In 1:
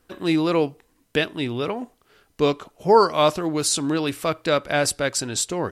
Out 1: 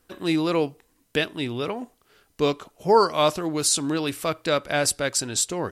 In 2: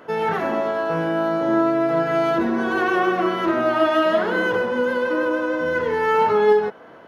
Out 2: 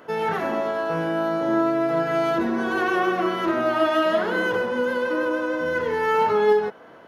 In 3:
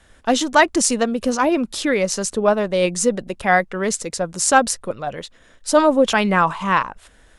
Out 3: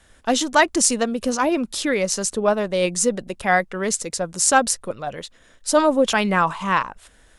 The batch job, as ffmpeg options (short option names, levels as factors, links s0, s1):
-af "highshelf=f=4700:g=5,volume=0.75"